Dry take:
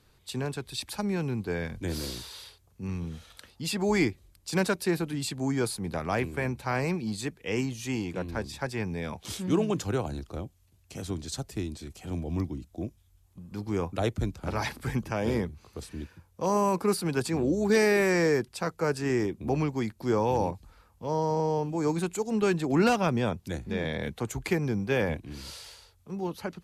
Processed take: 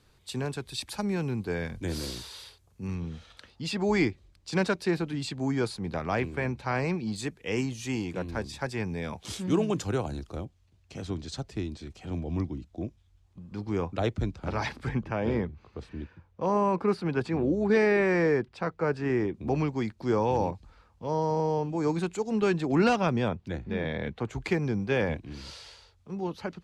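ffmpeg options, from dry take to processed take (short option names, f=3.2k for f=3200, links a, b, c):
-af "asetnsamples=n=441:p=0,asendcmd='2.95 lowpass f 5400;7.16 lowpass f 9600;10.45 lowpass f 5000;14.89 lowpass f 2800;19.34 lowpass f 5600;23.28 lowpass f 3200;24.33 lowpass f 5700',lowpass=11k"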